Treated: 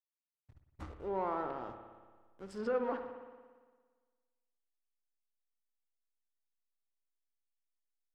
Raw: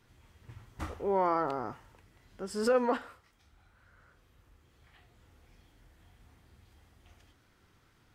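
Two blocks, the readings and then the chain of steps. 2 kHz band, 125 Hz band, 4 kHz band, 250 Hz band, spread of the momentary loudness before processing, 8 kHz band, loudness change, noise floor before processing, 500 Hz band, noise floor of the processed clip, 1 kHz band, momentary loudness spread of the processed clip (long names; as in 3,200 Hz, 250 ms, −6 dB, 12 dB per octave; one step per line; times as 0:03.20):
−8.0 dB, −8.0 dB, below −10 dB, −7.0 dB, 15 LU, below −15 dB, −6.5 dB, −67 dBFS, −6.5 dB, below −85 dBFS, −7.5 dB, 18 LU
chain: slack as between gear wheels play −39 dBFS
treble cut that deepens with the level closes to 2,700 Hz, closed at −27.5 dBFS
spring reverb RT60 1.5 s, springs 57 ms, chirp 65 ms, DRR 7 dB
level −7.5 dB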